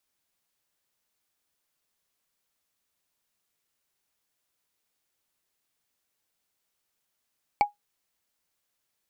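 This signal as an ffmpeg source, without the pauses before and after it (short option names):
-f lavfi -i "aevalsrc='0.224*pow(10,-3*t/0.14)*sin(2*PI*824*t)+0.0891*pow(10,-3*t/0.041)*sin(2*PI*2271.8*t)+0.0355*pow(10,-3*t/0.018)*sin(2*PI*4452.9*t)+0.0141*pow(10,-3*t/0.01)*sin(2*PI*7360.8*t)+0.00562*pow(10,-3*t/0.006)*sin(2*PI*10992.2*t)':d=0.45:s=44100"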